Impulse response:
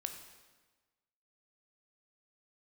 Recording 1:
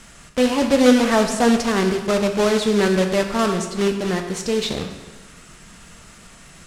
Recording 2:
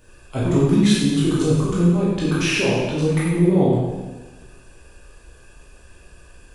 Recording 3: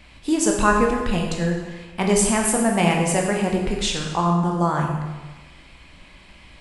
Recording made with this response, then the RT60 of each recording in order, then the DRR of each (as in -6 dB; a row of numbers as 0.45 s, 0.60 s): 1; 1.3 s, 1.3 s, 1.3 s; 5.0 dB, -7.5 dB, 0.0 dB